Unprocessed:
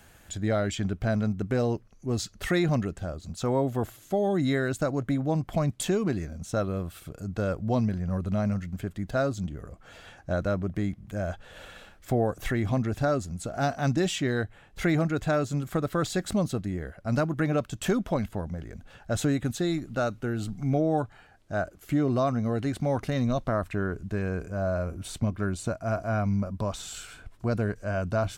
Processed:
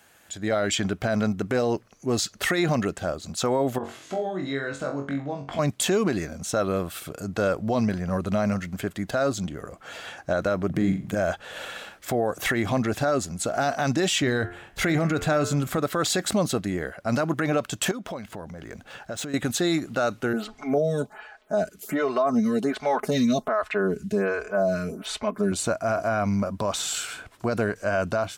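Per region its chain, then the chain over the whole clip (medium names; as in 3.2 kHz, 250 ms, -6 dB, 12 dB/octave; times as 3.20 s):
3.78–5.59 s: compression 3:1, threshold -38 dBFS + distance through air 100 m + flutter echo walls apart 3.7 m, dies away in 0.33 s
10.70–11.15 s: peaking EQ 180 Hz +10.5 dB 2.3 oct + flutter echo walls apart 7.2 m, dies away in 0.29 s
14.22–15.78 s: bass shelf 120 Hz +12 dB + de-hum 87.83 Hz, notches 39
17.91–19.34 s: median filter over 3 samples + compression, threshold -37 dBFS
20.33–25.52 s: comb 4.7 ms, depth 89% + lamp-driven phase shifter 1.3 Hz
whole clip: high-pass 430 Hz 6 dB/octave; level rider gain up to 11 dB; peak limiter -14.5 dBFS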